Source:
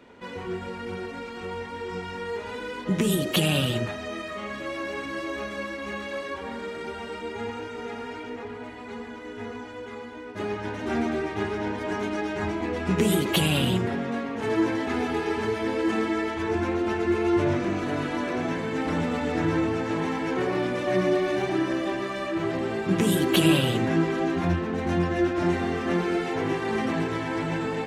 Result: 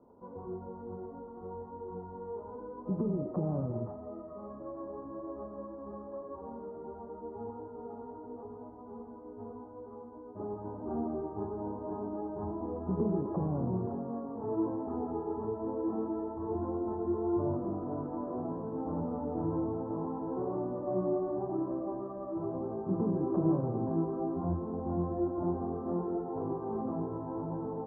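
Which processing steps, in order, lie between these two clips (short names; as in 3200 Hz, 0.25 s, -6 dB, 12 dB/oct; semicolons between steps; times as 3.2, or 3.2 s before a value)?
steep low-pass 1100 Hz 48 dB/oct; gain -8 dB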